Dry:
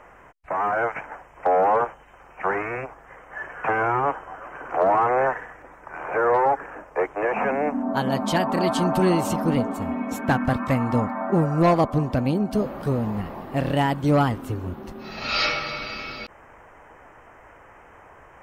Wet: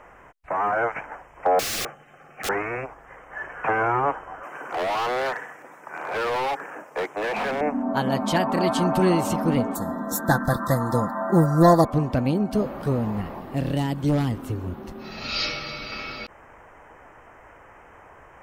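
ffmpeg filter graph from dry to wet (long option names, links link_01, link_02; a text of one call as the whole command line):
ffmpeg -i in.wav -filter_complex "[0:a]asettb=1/sr,asplit=3[link_01][link_02][link_03];[link_01]atrim=end=1.594[link_04];[link_02]atrim=start=1.59:end=2.49,asetpts=PTS-STARTPTS,afade=type=in:duration=0.004:curve=qsin,afade=type=out:start_time=0.896:duration=0.004:curve=qsin,lowshelf=frequency=100:width_type=q:width=3:gain=-12.5,aeval=exprs='(mod(14.1*val(0)+1,2)-1)/14.1':channel_layout=same,asuperstop=centerf=960:order=8:qfactor=5.2[link_05];[link_03]atrim=start=2.486[link_06];[link_04][link_05]acrossfade=duration=0.004:curve1=hsin:curve2=qsin[link_07];[link_07][link_06]acrossfade=duration=0.004:curve1=qsin:curve2=hsin,asettb=1/sr,asplit=3[link_08][link_09][link_10];[link_08]atrim=end=4.434[link_11];[link_09]atrim=start=4.43:end=7.61,asetpts=PTS-STARTPTS,afade=type=in:duration=0.004:curve=qsin,afade=type=out:start_time=3.176:duration=0.004:curve=qsin,highpass=frequency=140:width=0.5412,highpass=frequency=140:width=1.3066,highshelf=frequency=4600:gain=11.5,asoftclip=type=hard:threshold=-23.5dB[link_12];[link_10]atrim=start=7.606[link_13];[link_11][link_12]acrossfade=duration=0.004:curve1=hsin:curve2=qsin[link_14];[link_14][link_13]acrossfade=duration=0.004:curve1=qsin:curve2=hsin,asettb=1/sr,asplit=3[link_15][link_16][link_17];[link_15]atrim=end=9.754[link_18];[link_16]atrim=start=9.75:end=11.85,asetpts=PTS-STARTPTS,afade=type=in:duration=0.004:curve=qsin,afade=type=out:start_time=2.096:duration=0.004:curve=qsin,asuperstop=centerf=2600:order=20:qfactor=1.8,aemphasis=mode=production:type=50fm,aecho=1:1:5.9:0.52,atrim=end_sample=92610[link_19];[link_17]atrim=start=11.846[link_20];[link_18][link_19]acrossfade=duration=0.004:curve1=hsin:curve2=qsin[link_21];[link_21][link_20]acrossfade=duration=0.004:curve1=qsin:curve2=hsin,asettb=1/sr,asplit=3[link_22][link_23][link_24];[link_22]atrim=end=13.394[link_25];[link_23]atrim=start=13.39:end=15.92,asetpts=PTS-STARTPTS,afade=type=in:duration=0.004:curve=qsin,afade=type=out:start_time=2.526:duration=0.004:curve=qsin,acrossover=split=430|3000[link_26][link_27][link_28];[link_27]acompressor=threshold=-40dB:ratio=2:attack=3.2:release=140:knee=2.83:detection=peak[link_29];[link_26][link_29][link_28]amix=inputs=3:normalize=0,aeval=exprs='0.178*(abs(mod(val(0)/0.178+3,4)-2)-1)':channel_layout=same[link_30];[link_24]atrim=start=15.916[link_31];[link_25][link_30]acrossfade=duration=0.004:curve1=hsin:curve2=qsin[link_32];[link_32][link_31]acrossfade=duration=0.004:curve1=qsin:curve2=hsin" out.wav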